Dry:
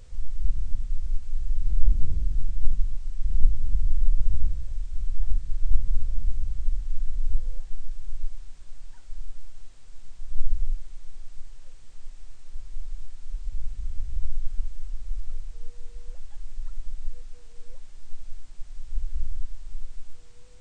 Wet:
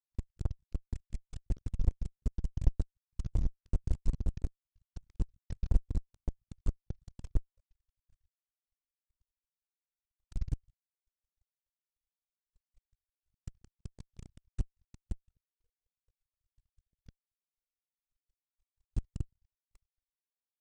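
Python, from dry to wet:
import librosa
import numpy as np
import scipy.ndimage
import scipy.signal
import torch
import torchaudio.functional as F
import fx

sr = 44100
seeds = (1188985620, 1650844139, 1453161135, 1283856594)

p1 = fx.pitch_trill(x, sr, semitones=-5.0, every_ms=92)
p2 = fx.dereverb_blind(p1, sr, rt60_s=1.1)
p3 = fx.highpass(p2, sr, hz=58.0, slope=6)
p4 = fx.peak_eq(p3, sr, hz=200.0, db=-12.5, octaves=0.82)
p5 = fx.transient(p4, sr, attack_db=6, sustain_db=-9)
p6 = fx.power_curve(p5, sr, exponent=3.0)
p7 = fx.fuzz(p6, sr, gain_db=42.0, gate_db=-52.0)
p8 = p6 + (p7 * librosa.db_to_amplitude(-7.5))
y = p8 * librosa.db_to_amplitude(-2.0)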